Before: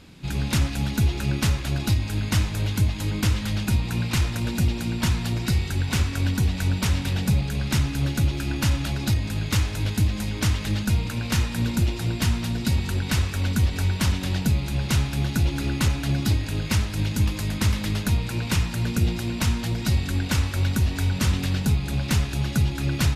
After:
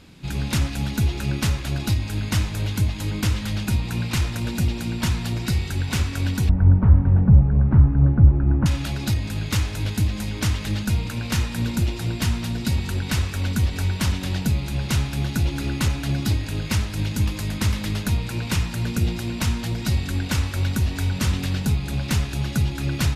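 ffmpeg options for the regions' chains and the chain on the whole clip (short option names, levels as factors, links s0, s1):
-filter_complex "[0:a]asettb=1/sr,asplit=3[s0][s1][s2];[s0]atrim=end=6.494[s3];[s1]atrim=start=6.49:end=8.66,asetpts=PTS-STARTPTS,afade=t=in:d=0.004:c=qsin,afade=t=out:st=2.166:d=0.004:c=qsin,lowpass=f=1300:w=0.5412,lowpass=f=1300:w=1.3066,lowshelf=f=180:g=12[s4];[s2]atrim=start=8.656[s5];[s3][s4]acrossfade=d=0.004:c1=hsin:c2=qsin[s6];[s6][s5]acrossfade=d=0.004:c1=qsin:c2=hsin"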